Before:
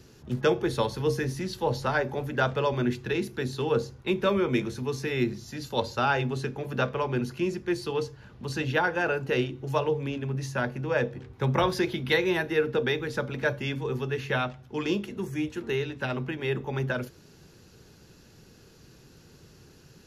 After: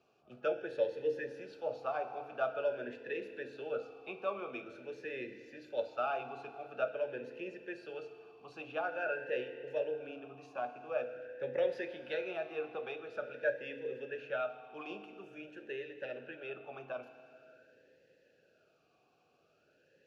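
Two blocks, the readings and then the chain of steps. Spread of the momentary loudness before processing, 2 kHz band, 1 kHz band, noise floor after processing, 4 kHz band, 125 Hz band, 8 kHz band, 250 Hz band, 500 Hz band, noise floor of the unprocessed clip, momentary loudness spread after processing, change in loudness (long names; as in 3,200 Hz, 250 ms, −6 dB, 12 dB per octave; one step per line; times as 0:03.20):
7 LU, −12.0 dB, −11.0 dB, −72 dBFS, −18.0 dB, −29.0 dB, below −25 dB, −19.0 dB, −8.5 dB, −55 dBFS, 12 LU, −11.0 dB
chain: flanger 0.13 Hz, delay 4.8 ms, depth 8.2 ms, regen −75%
feedback delay network reverb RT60 3 s, high-frequency decay 0.95×, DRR 9 dB
formant filter swept between two vowels a-e 0.47 Hz
level +4 dB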